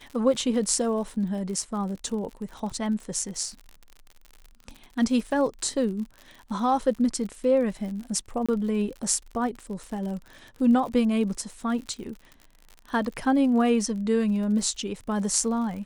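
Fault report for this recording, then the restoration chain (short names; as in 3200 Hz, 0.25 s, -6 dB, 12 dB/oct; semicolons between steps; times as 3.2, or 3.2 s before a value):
crackle 52/s -35 dBFS
8.46–8.49 gap 26 ms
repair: de-click; interpolate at 8.46, 26 ms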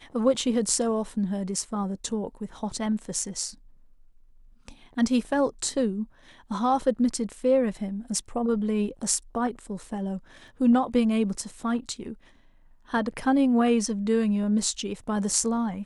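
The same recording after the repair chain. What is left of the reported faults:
none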